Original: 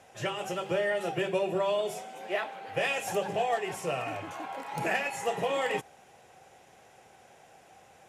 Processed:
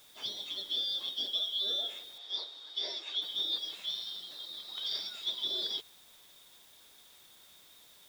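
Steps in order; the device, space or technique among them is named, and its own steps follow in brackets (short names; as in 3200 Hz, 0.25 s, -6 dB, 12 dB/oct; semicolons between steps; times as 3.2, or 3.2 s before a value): HPF 190 Hz; split-band scrambled radio (four-band scrambler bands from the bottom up 3412; BPF 350–2900 Hz; white noise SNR 22 dB); 2.18–3.22 three-band isolator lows -22 dB, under 290 Hz, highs -18 dB, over 6800 Hz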